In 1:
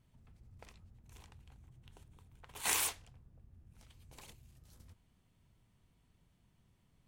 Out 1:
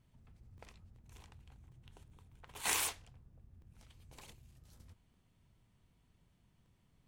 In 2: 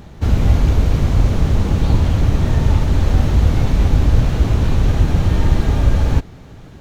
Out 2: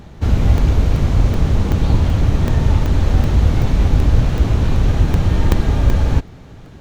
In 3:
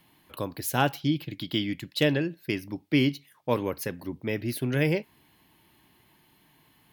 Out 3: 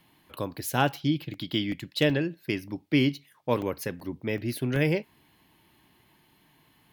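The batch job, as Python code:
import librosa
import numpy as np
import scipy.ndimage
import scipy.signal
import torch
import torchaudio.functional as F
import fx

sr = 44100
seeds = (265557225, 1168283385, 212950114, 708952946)

y = fx.high_shelf(x, sr, hz=9600.0, db=-4.0)
y = fx.buffer_crackle(y, sr, first_s=0.58, period_s=0.38, block=64, kind='zero')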